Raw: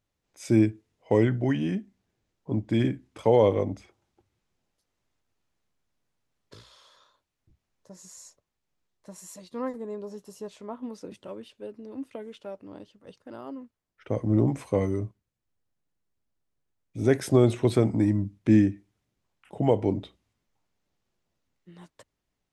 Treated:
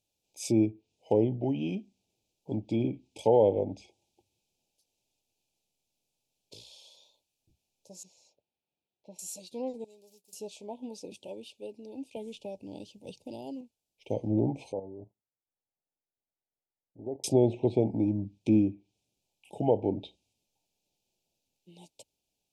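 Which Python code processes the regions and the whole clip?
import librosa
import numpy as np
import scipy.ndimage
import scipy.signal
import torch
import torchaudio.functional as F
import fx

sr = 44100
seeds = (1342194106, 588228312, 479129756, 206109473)

y = fx.chain(x, sr, fx.highpass(hz=120.0, slope=6),
    fx.air_absorb(metres=310.0), at=(8.03, 9.19))
y = fx.chain(y, sr, fx.median_filter(points=15),
    fx.pre_emphasis(coefficient=0.9), at=(9.84, 10.33))
y = fx.chain(y, sr, fx.bass_treble(bass_db=9, treble_db=4),
    fx.band_squash(depth_pct=70), at=(12.16, 13.61))
y = fx.chain(y, sr, fx.steep_lowpass(hz=1700.0, slope=96),
    fx.low_shelf(hz=420.0, db=-11.0),
    fx.level_steps(step_db=10), at=(14.72, 17.24))
y = fx.env_lowpass_down(y, sr, base_hz=1400.0, full_db=-20.0)
y = scipy.signal.sosfilt(scipy.signal.cheby1(4, 1.0, [880.0, 2400.0], 'bandstop', fs=sr, output='sos'), y)
y = fx.tilt_eq(y, sr, slope=2.0)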